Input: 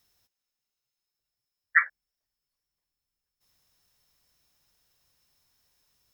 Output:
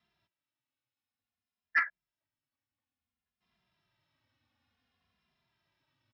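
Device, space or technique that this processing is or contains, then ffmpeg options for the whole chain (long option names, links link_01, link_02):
barber-pole flanger into a guitar amplifier: -filter_complex "[0:a]asplit=2[link_01][link_02];[link_02]adelay=2.5,afreqshift=-0.56[link_03];[link_01][link_03]amix=inputs=2:normalize=1,asoftclip=type=tanh:threshold=-23dB,highpass=77,equalizer=frequency=100:width_type=q:width=4:gain=5,equalizer=frequency=250:width_type=q:width=4:gain=8,equalizer=frequency=460:width_type=q:width=4:gain=-8,lowpass=frequency=3500:width=0.5412,lowpass=frequency=3500:width=1.3066,volume=2.5dB"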